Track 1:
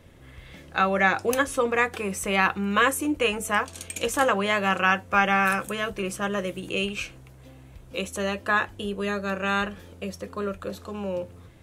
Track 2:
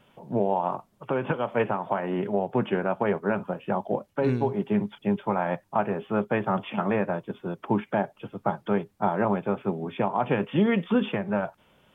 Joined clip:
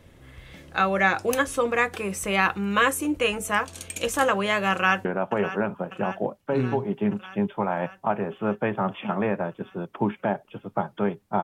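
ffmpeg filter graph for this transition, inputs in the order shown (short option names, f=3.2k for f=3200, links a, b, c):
-filter_complex "[0:a]apad=whole_dur=11.43,atrim=end=11.43,atrim=end=5.052[a];[1:a]atrim=start=2.738:end=9.12[b];[a][b]acrossfade=d=0.004:c1=hsin:c2=hsin,asplit=2[c][d];[d]afade=t=in:st=4.71:d=0.01,afade=t=out:st=5.05:d=0.01,aecho=0:1:600|1200|1800|2400|3000|3600|4200|4800|5400:0.223872|0.15671|0.109697|0.0767881|0.0537517|0.0376262|0.0263383|0.0184368|0.0129058[e];[c][e]amix=inputs=2:normalize=0"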